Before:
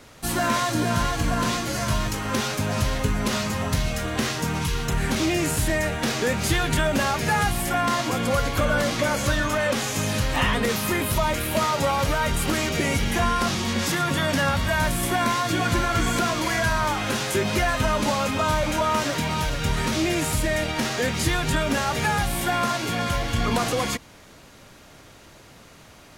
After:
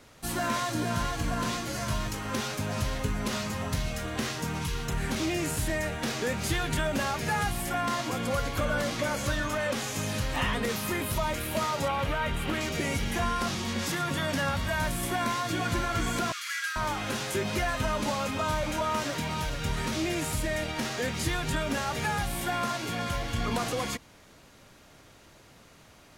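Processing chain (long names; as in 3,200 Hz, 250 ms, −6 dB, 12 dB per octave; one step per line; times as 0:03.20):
0:11.88–0:12.61: high shelf with overshoot 4,000 Hz −7.5 dB, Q 1.5
0:16.32–0:16.76: Butterworth high-pass 1,200 Hz 96 dB per octave
level −6.5 dB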